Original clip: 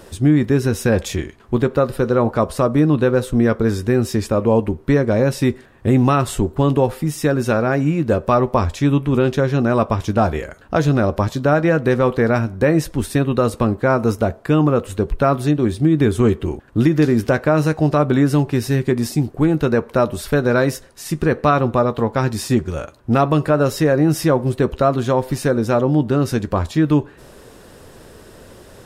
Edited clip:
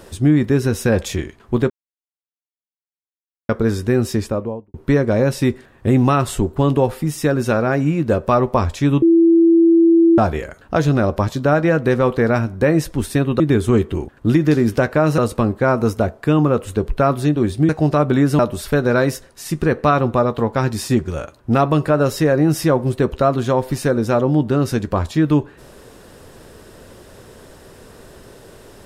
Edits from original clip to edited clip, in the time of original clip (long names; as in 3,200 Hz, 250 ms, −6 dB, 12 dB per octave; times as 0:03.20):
0:01.70–0:03.49: silence
0:04.11–0:04.74: fade out and dull
0:09.02–0:10.18: beep over 333 Hz −8 dBFS
0:15.91–0:17.69: move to 0:13.40
0:18.39–0:19.99: remove